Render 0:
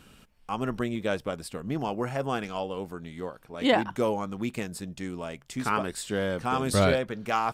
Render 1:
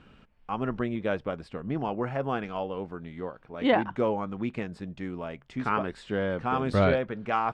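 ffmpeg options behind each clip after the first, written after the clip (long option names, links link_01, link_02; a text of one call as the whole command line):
ffmpeg -i in.wav -af "lowpass=2500" out.wav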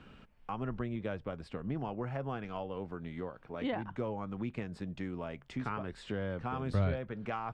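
ffmpeg -i in.wav -filter_complex "[0:a]acrossover=split=130[link_01][link_02];[link_02]acompressor=threshold=-38dB:ratio=3[link_03];[link_01][link_03]amix=inputs=2:normalize=0" out.wav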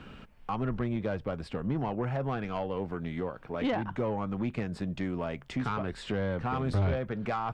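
ffmpeg -i in.wav -af "asoftclip=type=tanh:threshold=-30dB,volume=7.5dB" out.wav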